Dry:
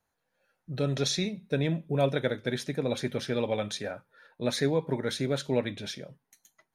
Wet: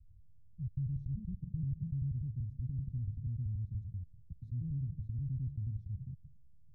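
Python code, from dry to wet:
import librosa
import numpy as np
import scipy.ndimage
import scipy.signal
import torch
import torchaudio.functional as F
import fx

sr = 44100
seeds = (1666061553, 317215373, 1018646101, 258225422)

y = fx.block_reorder(x, sr, ms=96.0, group=2)
y = scipy.signal.sosfilt(scipy.signal.cheby2(4, 80, 550.0, 'lowpass', fs=sr, output='sos'), y)
y = fx.env_flatten(y, sr, amount_pct=50)
y = y * librosa.db_to_amplitude(9.5)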